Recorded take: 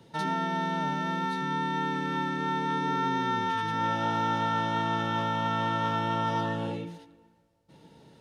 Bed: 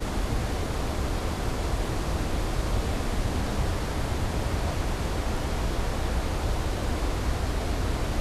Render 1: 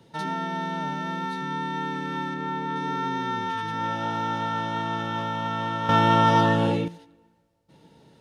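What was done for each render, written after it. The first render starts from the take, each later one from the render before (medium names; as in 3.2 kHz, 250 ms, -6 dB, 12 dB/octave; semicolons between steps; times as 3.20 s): 2.34–2.76 s: treble shelf 3.9 kHz -7.5 dB; 5.89–6.88 s: gain +10 dB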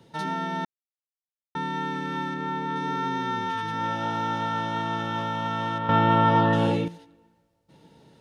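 0.65–1.55 s: mute; 5.78–6.53 s: distance through air 250 m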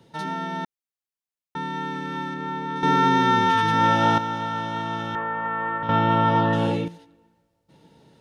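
2.83–4.18 s: gain +9.5 dB; 5.15–5.83 s: cabinet simulation 200–2200 Hz, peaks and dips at 270 Hz -8 dB, 420 Hz +9 dB, 620 Hz -4 dB, 1.1 kHz +6 dB, 1.8 kHz +7 dB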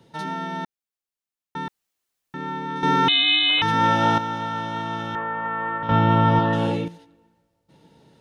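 1.68–2.34 s: room tone; 3.08–3.62 s: frequency inversion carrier 3.9 kHz; 5.91–6.39 s: bass shelf 160 Hz +9.5 dB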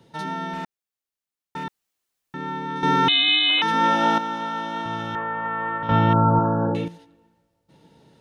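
0.53–1.64 s: hard clipper -26.5 dBFS; 3.28–4.86 s: steep high-pass 180 Hz; 6.13–6.75 s: brick-wall FIR low-pass 1.7 kHz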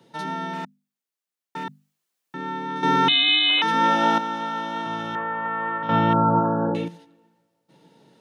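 high-pass 140 Hz 24 dB/octave; hum notches 50/100/150/200/250 Hz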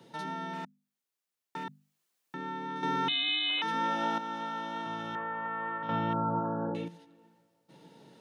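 compression 1.5:1, threshold -49 dBFS, peak gain reduction 12 dB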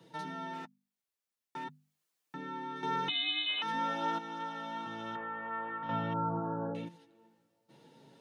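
flange 0.47 Hz, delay 6.1 ms, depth 3.6 ms, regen -17%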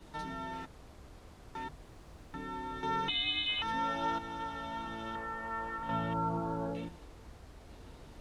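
add bed -25 dB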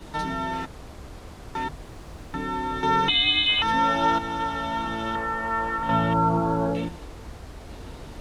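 trim +12 dB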